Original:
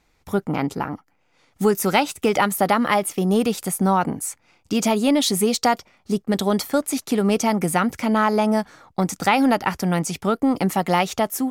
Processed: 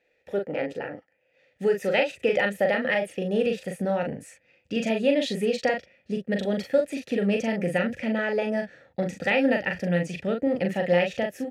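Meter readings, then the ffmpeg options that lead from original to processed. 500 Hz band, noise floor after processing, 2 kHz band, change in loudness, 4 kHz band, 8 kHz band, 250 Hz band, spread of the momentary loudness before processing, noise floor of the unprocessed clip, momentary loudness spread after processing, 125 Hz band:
-1.5 dB, -69 dBFS, -1.0 dB, -5.0 dB, -7.5 dB, -19.0 dB, -7.0 dB, 8 LU, -64 dBFS, 9 LU, -6.5 dB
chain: -filter_complex "[0:a]asubboost=boost=8.5:cutoff=150,asplit=3[s0][s1][s2];[s0]bandpass=f=530:t=q:w=8,volume=1[s3];[s1]bandpass=f=1840:t=q:w=8,volume=0.501[s4];[s2]bandpass=f=2480:t=q:w=8,volume=0.355[s5];[s3][s4][s5]amix=inputs=3:normalize=0,asplit=2[s6][s7];[s7]adelay=40,volume=0.596[s8];[s6][s8]amix=inputs=2:normalize=0,volume=2.66"

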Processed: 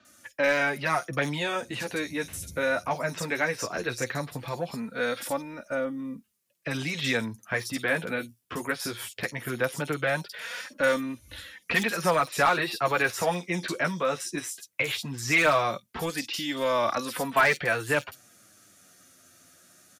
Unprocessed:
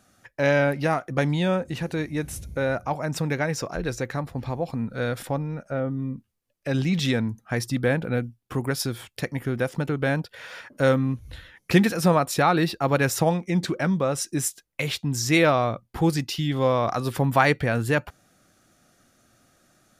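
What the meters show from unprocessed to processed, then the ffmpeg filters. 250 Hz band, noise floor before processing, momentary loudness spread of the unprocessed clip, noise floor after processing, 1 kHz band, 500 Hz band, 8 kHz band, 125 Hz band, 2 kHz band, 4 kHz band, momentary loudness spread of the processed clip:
-8.5 dB, -70 dBFS, 10 LU, -64 dBFS, -1.5 dB, -3.5 dB, -3.0 dB, -12.0 dB, +2.0 dB, -0.5 dB, 11 LU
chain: -filter_complex "[0:a]highpass=95,bandreject=f=790:w=12,acrossover=split=2900[s0][s1];[s1]acompressor=threshold=0.00891:ratio=4:attack=1:release=60[s2];[s0][s2]amix=inputs=2:normalize=0,highshelf=f=2200:g=12,acrossover=split=340|610|5400[s3][s4][s5][s6];[s3]acompressor=threshold=0.0178:ratio=6[s7];[s4]asoftclip=type=tanh:threshold=0.0335[s8];[s6]alimiter=level_in=1.33:limit=0.0631:level=0:latency=1:release=169,volume=0.75[s9];[s7][s8][s5][s9]amix=inputs=4:normalize=0,flanger=delay=3.3:depth=8.3:regen=-6:speed=0.18:shape=sinusoidal,asoftclip=type=hard:threshold=0.141,acrossover=split=4000[s10][s11];[s11]adelay=50[s12];[s10][s12]amix=inputs=2:normalize=0,volume=1.26"

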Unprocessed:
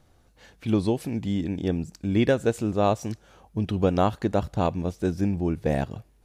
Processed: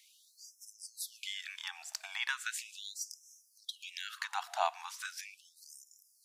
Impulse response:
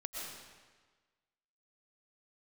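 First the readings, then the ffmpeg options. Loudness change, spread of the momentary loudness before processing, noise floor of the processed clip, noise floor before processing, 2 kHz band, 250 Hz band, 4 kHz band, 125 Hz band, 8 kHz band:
-13.5 dB, 8 LU, -69 dBFS, -60 dBFS, -1.5 dB, under -40 dB, +0.5 dB, under -40 dB, +3.5 dB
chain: -filter_complex "[0:a]acompressor=threshold=0.0398:ratio=6,lowshelf=f=480:g=-12,asplit=2[s0][s1];[1:a]atrim=start_sample=2205,lowshelf=f=260:g=7.5[s2];[s1][s2]afir=irnorm=-1:irlink=0,volume=0.0841[s3];[s0][s3]amix=inputs=2:normalize=0,afftfilt=real='re*gte(b*sr/1024,640*pow(5200/640,0.5+0.5*sin(2*PI*0.38*pts/sr)))':imag='im*gte(b*sr/1024,640*pow(5200/640,0.5+0.5*sin(2*PI*0.38*pts/sr)))':win_size=1024:overlap=0.75,volume=2.99"

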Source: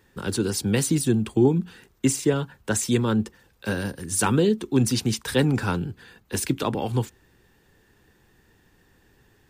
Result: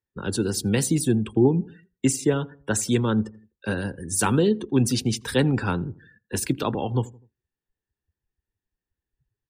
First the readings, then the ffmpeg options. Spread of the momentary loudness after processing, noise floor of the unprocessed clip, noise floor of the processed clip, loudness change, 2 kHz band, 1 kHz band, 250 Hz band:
9 LU, -61 dBFS, under -85 dBFS, 0.0 dB, -0.5 dB, 0.0 dB, 0.0 dB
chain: -filter_complex "[0:a]afftdn=nr=33:nf=-41,asplit=2[s0][s1];[s1]adelay=83,lowpass=f=820:p=1,volume=0.1,asplit=2[s2][s3];[s3]adelay=83,lowpass=f=820:p=1,volume=0.46,asplit=2[s4][s5];[s5]adelay=83,lowpass=f=820:p=1,volume=0.46[s6];[s0][s2][s4][s6]amix=inputs=4:normalize=0"

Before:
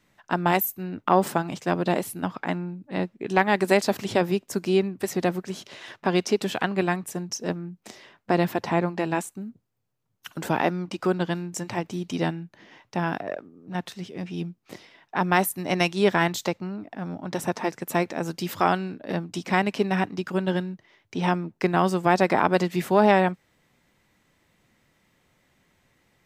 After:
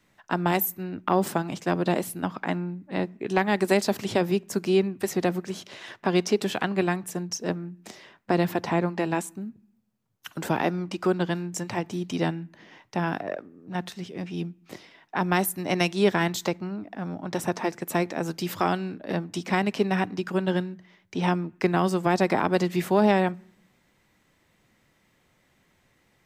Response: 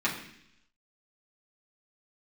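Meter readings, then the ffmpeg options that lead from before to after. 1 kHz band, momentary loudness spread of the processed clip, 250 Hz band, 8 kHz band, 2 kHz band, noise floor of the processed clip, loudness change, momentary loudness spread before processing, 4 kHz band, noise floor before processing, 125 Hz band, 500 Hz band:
-3.0 dB, 13 LU, 0.0 dB, 0.0 dB, -2.5 dB, -66 dBFS, -1.5 dB, 13 LU, -0.5 dB, -69 dBFS, 0.0 dB, -1.0 dB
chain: -filter_complex "[0:a]acrossover=split=430|3000[s0][s1][s2];[s1]acompressor=threshold=0.0501:ratio=2[s3];[s0][s3][s2]amix=inputs=3:normalize=0,asplit=2[s4][s5];[1:a]atrim=start_sample=2205,lowpass=2400[s6];[s5][s6]afir=irnorm=-1:irlink=0,volume=0.0316[s7];[s4][s7]amix=inputs=2:normalize=0"

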